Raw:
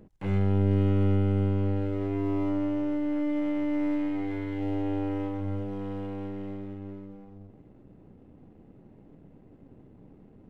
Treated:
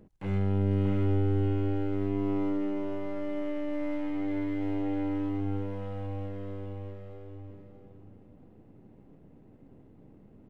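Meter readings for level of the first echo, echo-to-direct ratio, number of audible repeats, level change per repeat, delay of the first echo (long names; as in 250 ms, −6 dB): −5.5 dB, −5.0 dB, 3, −11.5 dB, 627 ms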